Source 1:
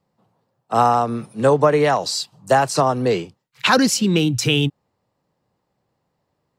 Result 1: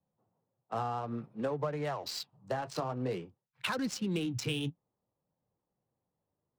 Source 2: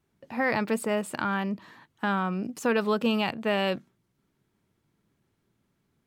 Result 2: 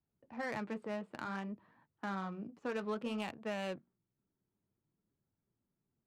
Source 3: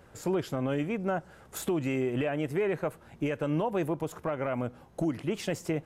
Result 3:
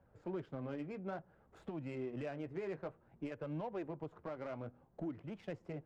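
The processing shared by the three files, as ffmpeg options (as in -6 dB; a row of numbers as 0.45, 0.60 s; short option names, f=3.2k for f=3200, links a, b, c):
-filter_complex "[0:a]acrossover=split=160[a][b];[b]acompressor=threshold=-19dB:ratio=6[c];[a][c]amix=inputs=2:normalize=0,flanger=delay=1.2:depth=9.7:regen=-54:speed=0.56:shape=sinusoidal,adynamicsmooth=sensitivity=6:basefreq=1.4k,volume=-8.5dB"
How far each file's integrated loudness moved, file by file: -18.0, -13.0, -13.0 LU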